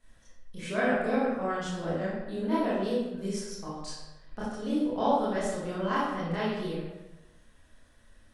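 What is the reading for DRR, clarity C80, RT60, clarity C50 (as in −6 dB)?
−10.5 dB, 2.0 dB, 1.0 s, −2.0 dB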